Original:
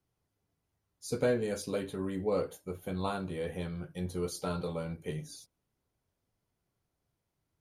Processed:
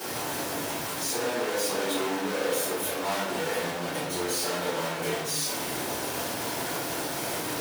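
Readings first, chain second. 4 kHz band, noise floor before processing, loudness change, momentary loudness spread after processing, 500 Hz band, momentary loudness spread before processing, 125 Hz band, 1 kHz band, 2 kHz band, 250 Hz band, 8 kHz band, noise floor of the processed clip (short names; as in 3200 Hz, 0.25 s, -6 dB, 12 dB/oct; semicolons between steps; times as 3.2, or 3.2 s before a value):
+17.0 dB, -84 dBFS, +6.5 dB, 3 LU, +5.0 dB, 10 LU, -1.0 dB, +12.5 dB, +15.0 dB, +4.0 dB, +18.0 dB, -33 dBFS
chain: infinite clipping; HPF 310 Hz 12 dB/oct; shoebox room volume 110 m³, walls mixed, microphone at 4.1 m; gain -4 dB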